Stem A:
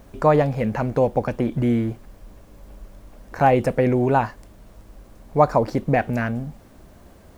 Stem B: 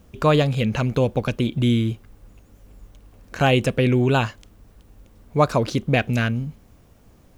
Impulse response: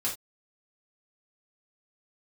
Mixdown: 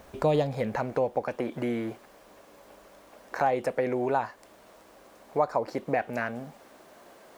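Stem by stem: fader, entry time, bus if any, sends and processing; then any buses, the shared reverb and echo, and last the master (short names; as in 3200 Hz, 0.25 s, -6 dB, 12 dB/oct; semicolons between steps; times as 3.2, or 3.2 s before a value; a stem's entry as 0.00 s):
+2.5 dB, 0.00 s, no send, HPF 460 Hz 12 dB/oct; high shelf 5800 Hz -4.5 dB; compressor 2:1, threshold -32 dBFS, peak gain reduction 11.5 dB
-6.5 dB, 0.00 s, polarity flipped, no send, auto duck -20 dB, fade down 1.35 s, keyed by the first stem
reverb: off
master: dry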